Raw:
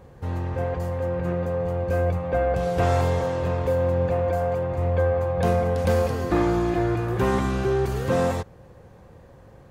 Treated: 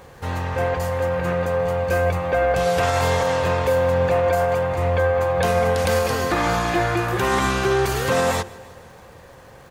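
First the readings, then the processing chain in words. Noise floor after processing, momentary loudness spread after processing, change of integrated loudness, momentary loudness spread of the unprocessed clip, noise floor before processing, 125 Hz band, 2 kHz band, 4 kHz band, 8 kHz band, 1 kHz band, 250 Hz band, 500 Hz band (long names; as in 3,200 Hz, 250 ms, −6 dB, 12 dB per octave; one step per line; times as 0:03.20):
−45 dBFS, 4 LU, +3.5 dB, 5 LU, −49 dBFS, −0.5 dB, +10.0 dB, +11.5 dB, +11.5 dB, +6.5 dB, −1.0 dB, +3.5 dB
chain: tilt shelving filter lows −6.5 dB, about 710 Hz
mains-hum notches 50/100/150/200/250/300/350 Hz
brickwall limiter −17.5 dBFS, peak gain reduction 6.5 dB
surface crackle 230 per second −53 dBFS
repeating echo 159 ms, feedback 60%, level −22 dB
level +7 dB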